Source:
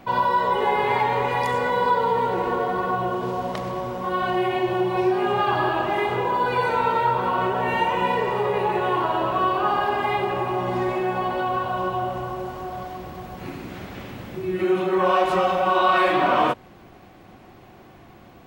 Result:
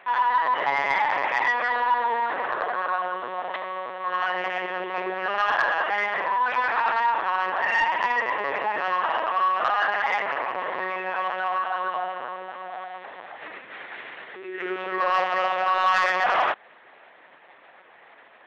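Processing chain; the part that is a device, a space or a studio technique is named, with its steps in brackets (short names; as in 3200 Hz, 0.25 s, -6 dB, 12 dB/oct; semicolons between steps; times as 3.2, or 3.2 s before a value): talking toy (LPC vocoder at 8 kHz pitch kept; HPF 650 Hz 12 dB/oct; bell 1800 Hz +10 dB 0.5 oct; soft clip -11.5 dBFS, distortion -19 dB)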